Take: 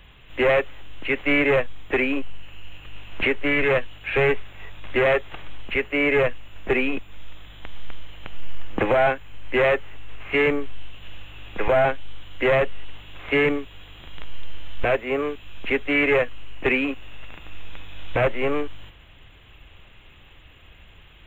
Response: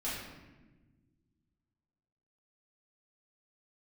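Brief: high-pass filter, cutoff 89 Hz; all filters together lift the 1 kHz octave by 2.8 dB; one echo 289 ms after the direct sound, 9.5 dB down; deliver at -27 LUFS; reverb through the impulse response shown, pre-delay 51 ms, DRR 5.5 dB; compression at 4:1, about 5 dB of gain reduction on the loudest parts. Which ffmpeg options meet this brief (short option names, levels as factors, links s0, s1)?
-filter_complex "[0:a]highpass=89,equalizer=f=1000:t=o:g=4,acompressor=threshold=0.1:ratio=4,aecho=1:1:289:0.335,asplit=2[s0][s1];[1:a]atrim=start_sample=2205,adelay=51[s2];[s1][s2]afir=irnorm=-1:irlink=0,volume=0.335[s3];[s0][s3]amix=inputs=2:normalize=0,volume=0.794"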